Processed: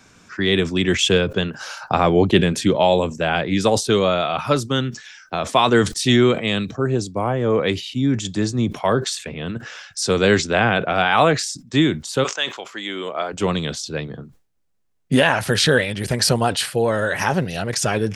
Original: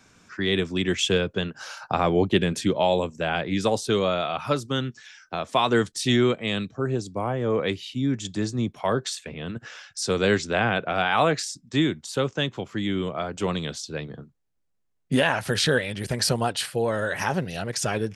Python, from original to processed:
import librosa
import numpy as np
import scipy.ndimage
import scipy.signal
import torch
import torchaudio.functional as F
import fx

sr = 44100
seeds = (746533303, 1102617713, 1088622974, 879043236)

y = fx.highpass(x, sr, hz=fx.line((12.23, 1000.0), (13.32, 340.0)), slope=12, at=(12.23, 13.32), fade=0.02)
y = fx.sustainer(y, sr, db_per_s=140.0)
y = y * 10.0 ** (5.5 / 20.0)